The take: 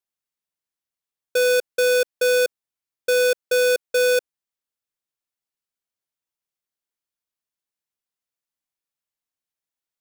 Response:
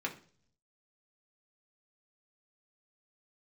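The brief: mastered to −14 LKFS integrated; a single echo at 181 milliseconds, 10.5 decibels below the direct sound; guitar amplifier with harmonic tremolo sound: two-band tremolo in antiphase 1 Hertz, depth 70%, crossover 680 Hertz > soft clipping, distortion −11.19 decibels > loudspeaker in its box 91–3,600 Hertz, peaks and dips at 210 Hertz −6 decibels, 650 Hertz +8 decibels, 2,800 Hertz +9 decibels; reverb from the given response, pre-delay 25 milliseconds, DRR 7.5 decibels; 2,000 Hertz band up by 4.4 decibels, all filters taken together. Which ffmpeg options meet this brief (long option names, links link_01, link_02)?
-filter_complex "[0:a]equalizer=frequency=2000:width_type=o:gain=4.5,aecho=1:1:181:0.299,asplit=2[link_01][link_02];[1:a]atrim=start_sample=2205,adelay=25[link_03];[link_02][link_03]afir=irnorm=-1:irlink=0,volume=-11dB[link_04];[link_01][link_04]amix=inputs=2:normalize=0,acrossover=split=680[link_05][link_06];[link_05]aeval=exprs='val(0)*(1-0.7/2+0.7/2*cos(2*PI*1*n/s))':channel_layout=same[link_07];[link_06]aeval=exprs='val(0)*(1-0.7/2-0.7/2*cos(2*PI*1*n/s))':channel_layout=same[link_08];[link_07][link_08]amix=inputs=2:normalize=0,asoftclip=threshold=-22dB,highpass=91,equalizer=frequency=210:width_type=q:width=4:gain=-6,equalizer=frequency=650:width_type=q:width=4:gain=8,equalizer=frequency=2800:width_type=q:width=4:gain=9,lowpass=frequency=3600:width=0.5412,lowpass=frequency=3600:width=1.3066,volume=11.5dB"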